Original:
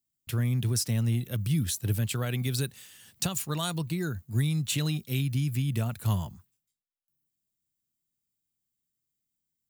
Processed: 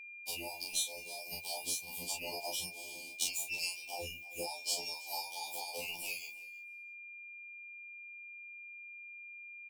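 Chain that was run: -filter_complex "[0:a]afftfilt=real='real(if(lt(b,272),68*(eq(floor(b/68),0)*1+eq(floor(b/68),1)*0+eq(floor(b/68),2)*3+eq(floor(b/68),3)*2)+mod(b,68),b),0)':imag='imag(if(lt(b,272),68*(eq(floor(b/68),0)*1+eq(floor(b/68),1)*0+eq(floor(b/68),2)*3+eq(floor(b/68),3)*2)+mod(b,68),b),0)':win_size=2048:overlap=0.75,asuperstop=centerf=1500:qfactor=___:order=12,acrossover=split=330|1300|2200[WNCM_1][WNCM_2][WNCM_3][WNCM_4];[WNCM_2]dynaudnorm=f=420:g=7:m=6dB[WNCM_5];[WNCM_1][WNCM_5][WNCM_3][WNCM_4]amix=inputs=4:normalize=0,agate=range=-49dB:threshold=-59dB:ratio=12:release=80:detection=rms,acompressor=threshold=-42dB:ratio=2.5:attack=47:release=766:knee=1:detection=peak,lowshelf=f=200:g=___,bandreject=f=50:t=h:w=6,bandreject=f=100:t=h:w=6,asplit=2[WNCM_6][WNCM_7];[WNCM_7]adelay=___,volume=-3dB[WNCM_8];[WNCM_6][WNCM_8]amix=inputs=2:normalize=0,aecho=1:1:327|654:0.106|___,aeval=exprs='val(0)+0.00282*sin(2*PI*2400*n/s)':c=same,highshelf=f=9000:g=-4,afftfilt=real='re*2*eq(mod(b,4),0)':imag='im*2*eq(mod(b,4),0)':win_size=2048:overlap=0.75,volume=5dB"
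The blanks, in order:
0.9, -9.5, 33, 0.018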